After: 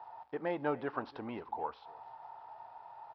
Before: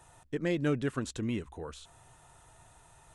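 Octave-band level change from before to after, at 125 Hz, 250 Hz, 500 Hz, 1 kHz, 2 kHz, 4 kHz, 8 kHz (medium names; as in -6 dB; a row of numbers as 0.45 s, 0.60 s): -15.0 dB, -8.5 dB, -2.5 dB, +8.5 dB, -4.0 dB, -11.0 dB, under -30 dB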